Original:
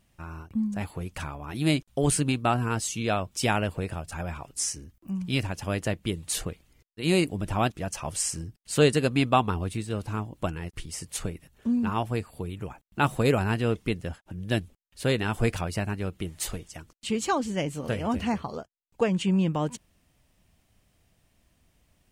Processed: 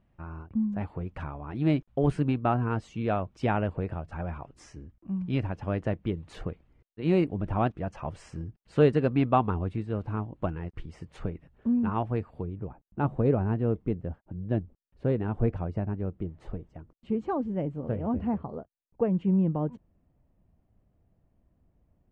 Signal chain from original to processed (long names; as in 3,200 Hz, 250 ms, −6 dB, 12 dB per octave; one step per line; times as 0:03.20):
Bessel low-pass filter 1,200 Hz, order 2, from 0:12.44 610 Hz